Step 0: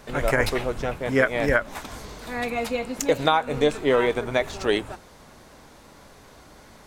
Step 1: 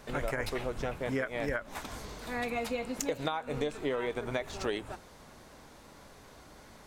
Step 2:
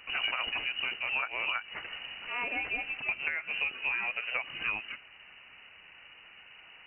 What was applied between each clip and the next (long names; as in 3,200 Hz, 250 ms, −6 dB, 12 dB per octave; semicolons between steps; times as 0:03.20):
downward compressor 6 to 1, threshold −25 dBFS, peak gain reduction 10.5 dB; level −4.5 dB
voice inversion scrambler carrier 2,900 Hz